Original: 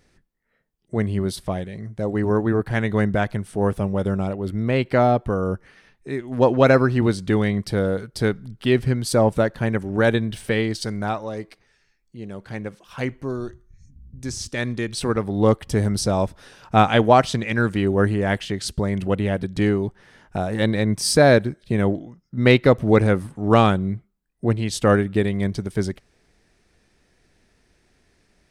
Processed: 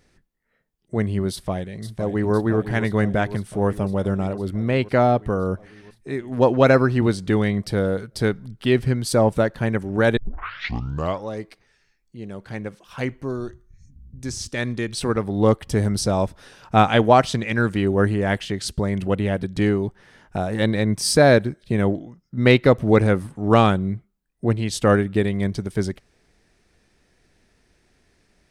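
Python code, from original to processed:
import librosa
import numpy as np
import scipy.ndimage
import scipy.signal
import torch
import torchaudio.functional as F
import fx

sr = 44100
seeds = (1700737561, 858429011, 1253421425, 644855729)

y = fx.echo_throw(x, sr, start_s=1.31, length_s=1.02, ms=510, feedback_pct=75, wet_db=-10.5)
y = fx.edit(y, sr, fx.tape_start(start_s=10.17, length_s=1.1), tone=tone)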